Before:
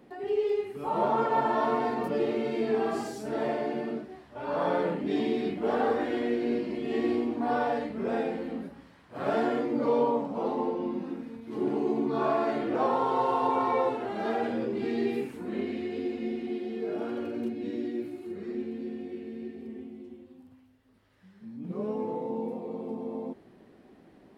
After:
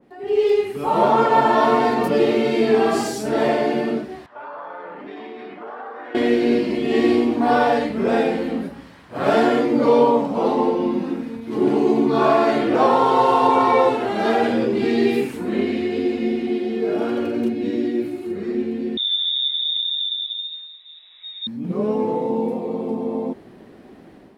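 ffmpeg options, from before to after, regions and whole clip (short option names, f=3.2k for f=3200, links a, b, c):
-filter_complex "[0:a]asettb=1/sr,asplit=3[a][b][c];[a]atrim=end=4.264[d];[b]atrim=start=4.26:end=6.15,asetpts=PTS-STARTPTS,afade=t=in:d=0.004:c=qsin,afade=t=out:st=1.886:d=0.004:c=qsin,bandpass=f=1.2k:t=q:w=1.6,acompressor=threshold=-42dB:ratio=6:attack=3.2:release=140:knee=1:detection=peak[e];[c]atrim=start=6.146[f];[d][e]acrossfade=d=0.004:c1=hsin:c2=qsin[g];[g][f]acrossfade=d=0.004:c1=qsin:c2=hsin,asettb=1/sr,asplit=3[h][i][j];[h]atrim=end=18.974[k];[i]atrim=start=18.97:end=21.47,asetpts=PTS-STARTPTS,afade=t=in:d=0.004:c=qsin,afade=t=out:st=2.496:d=0.004:c=qsin,lowshelf=f=550:t=q:w=3:g=7.5,acompressor=threshold=-37dB:ratio=3:attack=3.2:release=140:knee=1:detection=peak,lowpass=f=3.3k:t=q:w=0.5098,lowpass=f=3.3k:t=q:w=0.6013,lowpass=f=3.3k:t=q:w=0.9,lowpass=f=3.3k:t=q:w=2.563,afreqshift=-3900[l];[j]atrim=start=21.466[m];[k][l]acrossfade=d=0.004:c1=hsin:c2=qsin[n];[n][m]acrossfade=d=0.004:c1=qsin:c2=hsin,dynaudnorm=f=120:g=5:m=11dB,adynamicequalizer=threshold=0.0282:dfrequency=2200:dqfactor=0.7:tfrequency=2200:tqfactor=0.7:attack=5:release=100:ratio=0.375:range=2.5:mode=boostabove:tftype=highshelf"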